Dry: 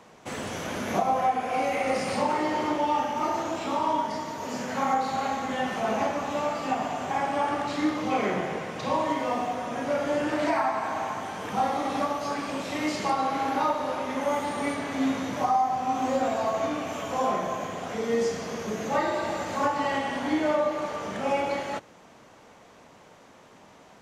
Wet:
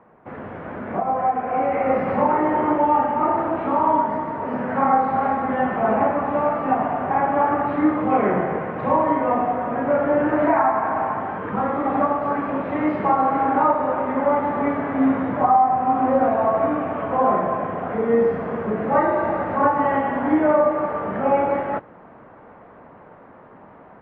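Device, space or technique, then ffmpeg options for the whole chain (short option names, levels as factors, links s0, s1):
action camera in a waterproof case: -filter_complex "[0:a]asettb=1/sr,asplit=3[s0][s1][s2];[s0]atrim=end=11.384[s3];[s1]atrim=start=11.38:end=11.86,asetpts=PTS-STARTPTS,afade=t=in:d=0.004:c=qsin,afade=t=out:st=0.476:d=0.004:c=qsin,equalizer=f=750:t=o:w=0.34:g=-10.5[s4];[s2]atrim=start=11.856[s5];[s3][s4]acrossfade=d=0.004:c1=hsin:c2=qsin[s6];[s6][s5]acrossfade=d=0.004:c1=qsin:c2=hsin,lowpass=f=1700:w=0.5412,lowpass=f=1700:w=1.3066,dynaudnorm=f=960:g=3:m=2.51" -ar 44100 -c:a aac -b:a 48k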